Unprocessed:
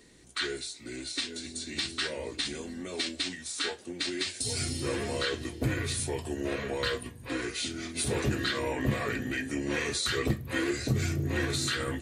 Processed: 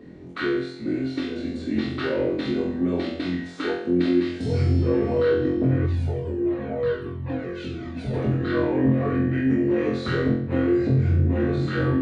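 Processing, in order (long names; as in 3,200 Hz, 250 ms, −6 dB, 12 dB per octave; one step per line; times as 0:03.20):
high-pass filter 170 Hz 12 dB per octave
spectral tilt −4 dB per octave
downward compressor, threshold −31 dBFS, peak gain reduction 14 dB
head-to-tape spacing loss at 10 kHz 27 dB
flutter between parallel walls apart 3.9 metres, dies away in 0.62 s
0:05.86–0:08.14: flanger whose copies keep moving one way falling 1.5 Hz
level +9 dB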